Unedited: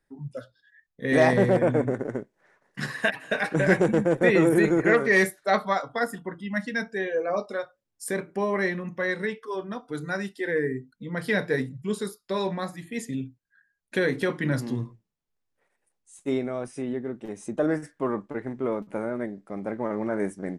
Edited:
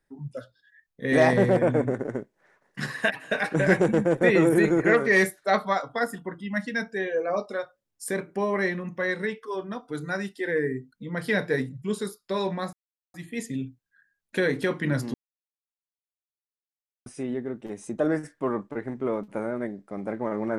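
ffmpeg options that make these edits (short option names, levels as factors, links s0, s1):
-filter_complex "[0:a]asplit=4[s0][s1][s2][s3];[s0]atrim=end=12.73,asetpts=PTS-STARTPTS,afade=t=out:st=12.726:d=0.004:c=hsin,apad=pad_dur=0.41[s4];[s1]atrim=start=12.73:end=14.73,asetpts=PTS-STARTPTS,afade=t=in:d=0.004:c=hsin,afade=t=out:st=1.996:d=0.004:c=hsin[s5];[s2]atrim=start=14.73:end=16.65,asetpts=PTS-STARTPTS,volume=0[s6];[s3]atrim=start=16.65,asetpts=PTS-STARTPTS,afade=t=in:d=0.004:c=hsin[s7];[s4][s5][s6][s7]concat=n=4:v=0:a=1"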